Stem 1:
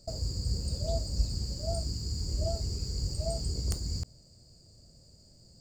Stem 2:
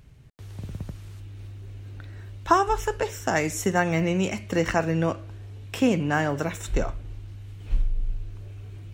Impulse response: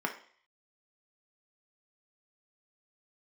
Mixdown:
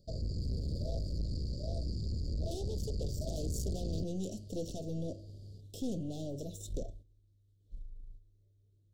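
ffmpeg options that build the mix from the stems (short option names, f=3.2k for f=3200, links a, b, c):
-filter_complex "[0:a]lowpass=2.8k,volume=3dB[a];[1:a]volume=-7.5dB,afade=t=out:st=6.77:d=0.29:silence=0.223872[b];[a][b]amix=inputs=2:normalize=0,agate=range=-7dB:threshold=-48dB:ratio=16:detection=peak,aeval=exprs='(tanh(39.8*val(0)+0.45)-tanh(0.45))/39.8':c=same,asuperstop=centerf=1500:order=12:qfactor=0.52"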